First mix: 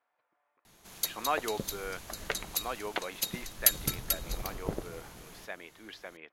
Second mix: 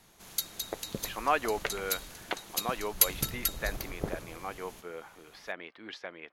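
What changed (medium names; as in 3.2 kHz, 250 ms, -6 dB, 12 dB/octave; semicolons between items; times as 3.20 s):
speech +3.5 dB; background: entry -0.65 s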